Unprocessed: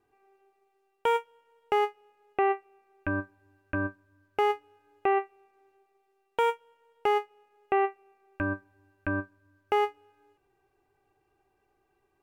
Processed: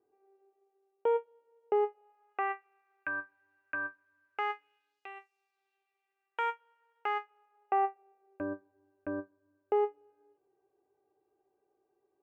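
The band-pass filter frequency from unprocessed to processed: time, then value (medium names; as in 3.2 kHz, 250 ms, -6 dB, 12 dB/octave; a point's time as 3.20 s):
band-pass filter, Q 1.6
1.80 s 450 Hz
2.50 s 1.6 kHz
4.51 s 1.6 kHz
5.14 s 6.8 kHz
6.47 s 1.5 kHz
7.19 s 1.5 kHz
8.43 s 460 Hz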